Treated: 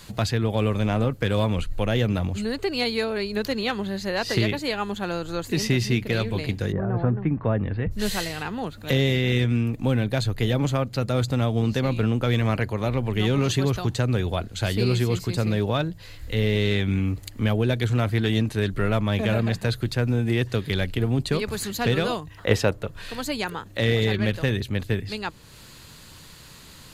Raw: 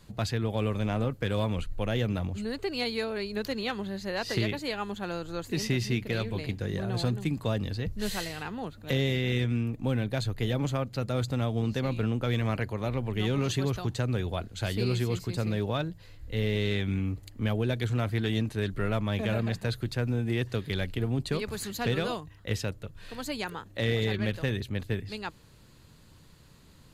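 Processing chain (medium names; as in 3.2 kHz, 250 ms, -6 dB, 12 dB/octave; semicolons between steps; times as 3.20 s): 6.71–7.90 s: low-pass 1.4 kHz -> 2.3 kHz 24 dB/octave; 22.37–23.01 s: peaking EQ 740 Hz +12.5 dB -> +6.5 dB 2.8 oct; tape noise reduction on one side only encoder only; trim +6 dB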